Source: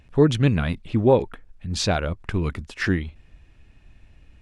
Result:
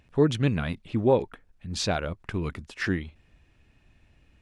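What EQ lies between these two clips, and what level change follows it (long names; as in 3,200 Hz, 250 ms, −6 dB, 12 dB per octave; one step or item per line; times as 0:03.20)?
low-shelf EQ 61 Hz −10 dB
−4.0 dB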